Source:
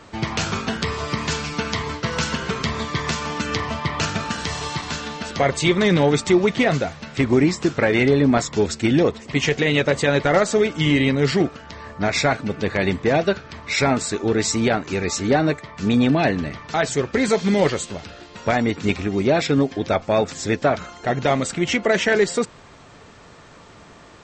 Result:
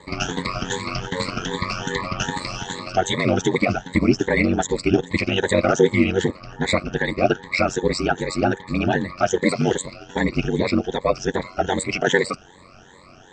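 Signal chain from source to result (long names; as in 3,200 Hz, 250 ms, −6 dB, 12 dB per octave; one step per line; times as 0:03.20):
rippled gain that drifts along the octave scale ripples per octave 1, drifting +1.4 Hz, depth 22 dB
phase-vocoder stretch with locked phases 0.55×
ring modulation 46 Hz
level −2 dB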